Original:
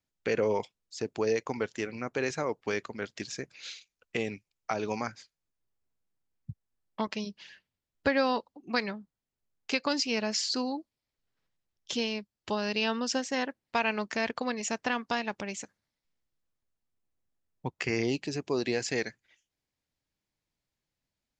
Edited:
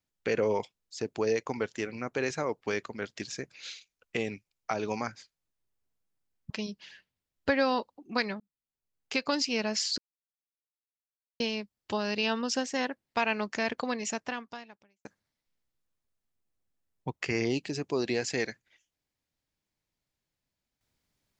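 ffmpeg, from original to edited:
ffmpeg -i in.wav -filter_complex "[0:a]asplit=6[link_01][link_02][link_03][link_04][link_05][link_06];[link_01]atrim=end=6.502[link_07];[link_02]atrim=start=7.078:end=8.98,asetpts=PTS-STARTPTS,afade=type=out:start_time=1.898:duration=0.004:curve=hsin[link_08];[link_03]atrim=start=8.98:end=10.56,asetpts=PTS-STARTPTS,afade=type=in:duration=0.83,afade=type=out:start_time=1.576:duration=0.004:curve=hsin[link_09];[link_04]atrim=start=10.56:end=11.98,asetpts=PTS-STARTPTS,volume=0[link_10];[link_05]atrim=start=11.98:end=15.63,asetpts=PTS-STARTPTS,afade=type=in:duration=0.004:curve=hsin,afade=type=out:start_time=2.66:duration=0.99:curve=qua[link_11];[link_06]atrim=start=15.63,asetpts=PTS-STARTPTS,afade=type=in:duration=0.004:curve=hsin[link_12];[link_08][link_09][link_10][link_11][link_12]concat=n=5:v=0:a=1[link_13];[link_07][link_13]acrossfade=duration=0.004:curve1=hsin:curve2=hsin" out.wav

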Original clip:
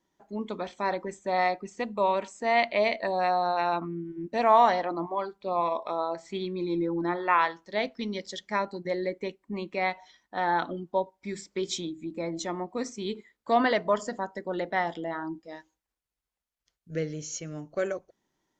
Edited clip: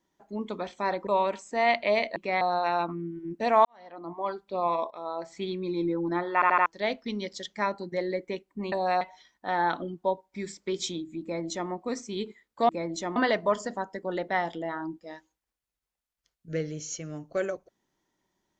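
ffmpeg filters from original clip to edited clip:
ffmpeg -i in.wav -filter_complex "[0:a]asplit=14[link_01][link_02][link_03][link_04][link_05][link_06][link_07][link_08][link_09][link_10][link_11][link_12][link_13][link_14];[link_01]atrim=end=1.072[link_15];[link_02]atrim=start=1.958:end=3.052[link_16];[link_03]atrim=start=9.648:end=9.902[link_17];[link_04]atrim=start=3.338:end=4.58,asetpts=PTS-STARTPTS,afade=type=out:start_time=1.238:duration=0.004:curve=hsin[link_18];[link_05]atrim=start=4.58:end=5.84,asetpts=PTS-STARTPTS,afade=type=in:duration=0.63:curve=qua,afade=type=out:start_time=1.256:duration=0.004:curve=hsin:silence=0.211349[link_19];[link_06]atrim=start=5.84:end=7.352,asetpts=PTS-STARTPTS,afade=type=in:duration=0.4:silence=0.211349[link_20];[link_07]atrim=start=7.268:end=7.352[link_21];[link_08]atrim=start=7.268:end=7.352[link_22];[link_09]atrim=start=7.268:end=7.352[link_23];[link_10]atrim=start=7.588:end=9.652[link_24];[link_11]atrim=start=3.048:end=3.342[link_25];[link_12]atrim=start=9.898:end=13.582[link_26];[link_13]atrim=start=12.118:end=12.592[link_27];[link_14]atrim=start=13.578[link_28];[link_15][link_16]acrossfade=duration=0.004:curve1=hsin:curve2=hsin[link_29];[link_29][link_17]acrossfade=duration=0.004:curve1=hsin:curve2=hsin[link_30];[link_18][link_19][link_20]concat=n=3:v=0:a=1[link_31];[link_30][link_31]acrossfade=duration=0.004:curve1=hsin:curve2=hsin[link_32];[link_32][link_21]acrossfade=duration=0.004:curve1=hsin:curve2=hsin[link_33];[link_33][link_22]acrossfade=duration=0.004:curve1=hsin:curve2=hsin[link_34];[link_34][link_23]acrossfade=duration=0.004:curve1=hsin:curve2=hsin[link_35];[link_35][link_24]acrossfade=duration=0.004:curve1=hsin:curve2=hsin[link_36];[link_36][link_25]acrossfade=duration=0.004:curve1=hsin:curve2=hsin[link_37];[link_37][link_26]acrossfade=duration=0.004:curve1=hsin:curve2=hsin[link_38];[link_38][link_27]acrossfade=duration=0.004:curve1=hsin:curve2=hsin[link_39];[link_39][link_28]acrossfade=duration=0.004:curve1=hsin:curve2=hsin" out.wav

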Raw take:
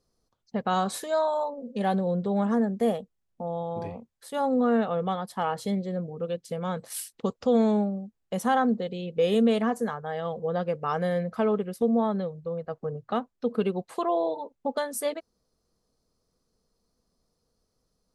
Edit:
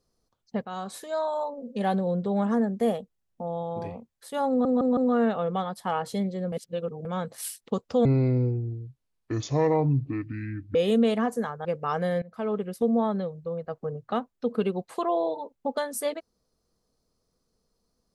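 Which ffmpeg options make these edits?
ffmpeg -i in.wav -filter_complex "[0:a]asplit=11[link_01][link_02][link_03][link_04][link_05][link_06][link_07][link_08][link_09][link_10][link_11];[link_01]atrim=end=0.65,asetpts=PTS-STARTPTS,afade=type=out:start_time=0.646:duration=0.004:curve=hsin:silence=0.237137[link_12];[link_02]atrim=start=0.65:end=4.652,asetpts=PTS-STARTPTS,afade=type=in:duration=0.95:silence=0.237137[link_13];[link_03]atrim=start=4.488:end=4.652[link_14];[link_04]atrim=start=4.488:end=4.652[link_15];[link_05]atrim=start=4.488:end=6.042[link_16];[link_06]atrim=start=6.038:end=6.572,asetpts=PTS-STARTPTS,areverse[link_17];[link_07]atrim=start=6.568:end=7.574[link_18];[link_08]atrim=start=7.57:end=9.19,asetpts=PTS-STARTPTS,asetrate=26460,aresample=44100[link_19];[link_09]atrim=start=9.186:end=10.092[link_20];[link_10]atrim=start=10.648:end=11.22,asetpts=PTS-STARTPTS,afade=type=out:start_time=0.568:duration=0.004:curve=hsin:silence=0.0891251[link_21];[link_11]atrim=start=11.22,asetpts=PTS-STARTPTS,afade=type=in:duration=0.45:silence=0.0891251[link_22];[link_12][link_13]concat=n=2:v=0:a=1[link_23];[link_23][link_14]acrossfade=duration=0.004:curve1=hsin:curve2=hsin[link_24];[link_24][link_15]acrossfade=duration=0.004:curve1=hsin:curve2=hsin[link_25];[link_25][link_16]acrossfade=duration=0.004:curve1=hsin:curve2=hsin[link_26];[link_26][link_17]acrossfade=duration=0.004:curve1=hsin:curve2=hsin[link_27];[link_27][link_18]acrossfade=duration=0.004:curve1=hsin:curve2=hsin[link_28];[link_28][link_19]acrossfade=duration=0.004:curve1=hsin:curve2=hsin[link_29];[link_29][link_20]acrossfade=duration=0.004:curve1=hsin:curve2=hsin[link_30];[link_21][link_22]concat=n=2:v=0:a=1[link_31];[link_30][link_31]acrossfade=duration=0.004:curve1=hsin:curve2=hsin" out.wav

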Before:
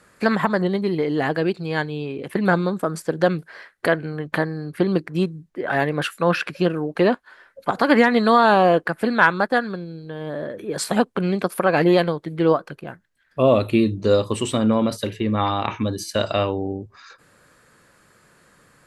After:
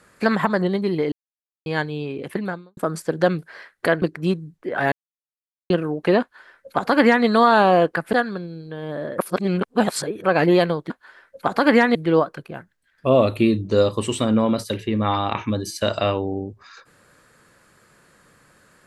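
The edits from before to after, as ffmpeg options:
ffmpeg -i in.wav -filter_complex "[0:a]asplit=12[link_01][link_02][link_03][link_04][link_05][link_06][link_07][link_08][link_09][link_10][link_11][link_12];[link_01]atrim=end=1.12,asetpts=PTS-STARTPTS,afade=type=out:start_time=1.116:duration=0.004:curve=hsin[link_13];[link_02]atrim=start=1.12:end=1.66,asetpts=PTS-STARTPTS,volume=0[link_14];[link_03]atrim=start=1.66:end=2.77,asetpts=PTS-STARTPTS,afade=type=in:duration=0.004:curve=hsin,afade=type=out:start_time=0.63:duration=0.48:curve=qua[link_15];[link_04]atrim=start=2.77:end=4.022,asetpts=PTS-STARTPTS,afade=type=in:duration=0.004:curve=hsin[link_16];[link_05]atrim=start=4.938:end=5.84,asetpts=PTS-STARTPTS,afade=type=out:start_time=0.898:duration=0.004:curve=hsin[link_17];[link_06]atrim=start=5.84:end=6.62,asetpts=PTS-STARTPTS,volume=0[link_18];[link_07]atrim=start=6.62:end=9.052,asetpts=PTS-STARTPTS,afade=type=in:duration=0.004:curve=hsin[link_19];[link_08]atrim=start=9.508:end=10.562[link_20];[link_09]atrim=start=10.558:end=11.622,asetpts=PTS-STARTPTS,areverse[link_21];[link_10]atrim=start=11.618:end=12.282[link_22];[link_11]atrim=start=7.128:end=8.182[link_23];[link_12]atrim=start=12.278[link_24];[link_13][link_14][link_15][link_16]concat=n=4:v=0:a=1[link_25];[link_17][link_18][link_19]concat=n=3:v=0:a=1[link_26];[link_25][link_26]acrossfade=duration=0.004:curve1=hsin:curve2=hsin[link_27];[link_27][link_20]acrossfade=duration=0.004:curve1=hsin:curve2=hsin[link_28];[link_28][link_21]acrossfade=duration=0.004:curve1=hsin:curve2=hsin[link_29];[link_29][link_22]acrossfade=duration=0.004:curve1=hsin:curve2=hsin[link_30];[link_30][link_23]acrossfade=duration=0.004:curve1=hsin:curve2=hsin[link_31];[link_31][link_24]acrossfade=duration=0.004:curve1=hsin:curve2=hsin" out.wav

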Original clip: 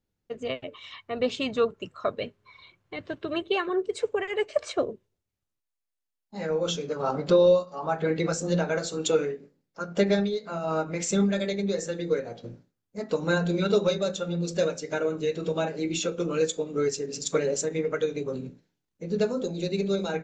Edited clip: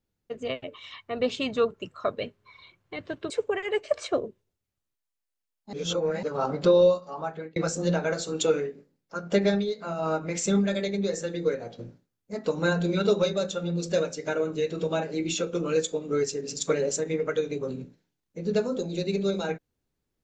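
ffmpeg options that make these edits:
ffmpeg -i in.wav -filter_complex "[0:a]asplit=5[link_01][link_02][link_03][link_04][link_05];[link_01]atrim=end=3.302[link_06];[link_02]atrim=start=3.948:end=6.382[link_07];[link_03]atrim=start=6.378:end=6.882,asetpts=PTS-STARTPTS,areverse[link_08];[link_04]atrim=start=6.878:end=8.21,asetpts=PTS-STARTPTS,afade=type=out:start_time=0.802:duration=0.53[link_09];[link_05]atrim=start=8.21,asetpts=PTS-STARTPTS,afade=type=in:duration=0.004:curve=hsin[link_10];[link_06][link_07]acrossfade=duration=0.004:curve1=hsin:curve2=hsin[link_11];[link_11][link_08]acrossfade=duration=0.004:curve1=hsin:curve2=hsin[link_12];[link_09][link_10]concat=n=2:v=0:a=1[link_13];[link_12][link_13]acrossfade=duration=0.004:curve1=hsin:curve2=hsin" out.wav

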